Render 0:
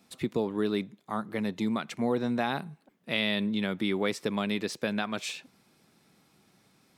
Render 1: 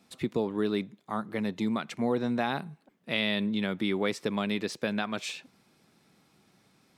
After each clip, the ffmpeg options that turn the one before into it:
-af "highshelf=f=10000:g=-5.5"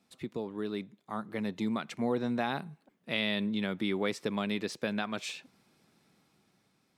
-af "dynaudnorm=f=240:g=9:m=1.88,volume=0.398"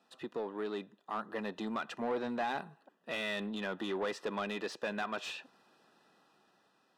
-filter_complex "[0:a]asuperstop=centerf=2200:order=12:qfactor=5.7,asplit=2[s0][s1];[s1]highpass=f=720:p=1,volume=11.2,asoftclip=type=tanh:threshold=0.133[s2];[s0][s2]amix=inputs=2:normalize=0,lowpass=f=1200:p=1,volume=0.501,lowshelf=f=220:g=-11,volume=0.562"

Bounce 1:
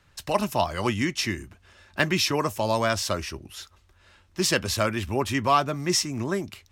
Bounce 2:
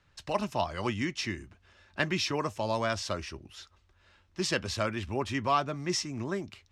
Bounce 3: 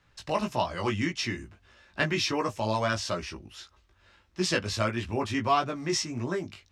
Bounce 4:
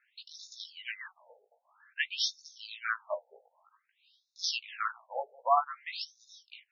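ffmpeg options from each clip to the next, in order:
-af "lowpass=6400,volume=0.501"
-af "flanger=delay=16.5:depth=2.5:speed=1.6,volume=1.88"
-af "afftfilt=real='re*between(b*sr/1024,600*pow(5000/600,0.5+0.5*sin(2*PI*0.52*pts/sr))/1.41,600*pow(5000/600,0.5+0.5*sin(2*PI*0.52*pts/sr))*1.41)':imag='im*between(b*sr/1024,600*pow(5000/600,0.5+0.5*sin(2*PI*0.52*pts/sr))/1.41,600*pow(5000/600,0.5+0.5*sin(2*PI*0.52*pts/sr))*1.41)':win_size=1024:overlap=0.75"

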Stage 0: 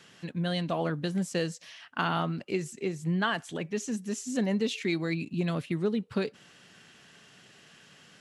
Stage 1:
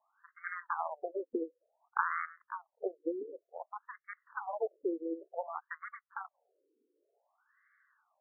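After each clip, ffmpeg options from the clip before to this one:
-af "aeval=exprs='0.211*(cos(1*acos(clip(val(0)/0.211,-1,1)))-cos(1*PI/2))+0.0335*(cos(7*acos(clip(val(0)/0.211,-1,1)))-cos(7*PI/2))':c=same,acompressor=threshold=0.0224:ratio=6,afftfilt=real='re*between(b*sr/1024,360*pow(1600/360,0.5+0.5*sin(2*PI*0.55*pts/sr))/1.41,360*pow(1600/360,0.5+0.5*sin(2*PI*0.55*pts/sr))*1.41)':imag='im*between(b*sr/1024,360*pow(1600/360,0.5+0.5*sin(2*PI*0.55*pts/sr))/1.41,360*pow(1600/360,0.5+0.5*sin(2*PI*0.55*pts/sr))*1.41)':win_size=1024:overlap=0.75,volume=2.99"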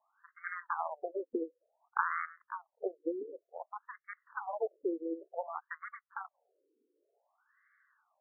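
-af anull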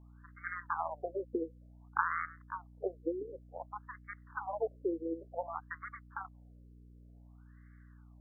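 -af "aeval=exprs='val(0)+0.00178*(sin(2*PI*60*n/s)+sin(2*PI*2*60*n/s)/2+sin(2*PI*3*60*n/s)/3+sin(2*PI*4*60*n/s)/4+sin(2*PI*5*60*n/s)/5)':c=same"

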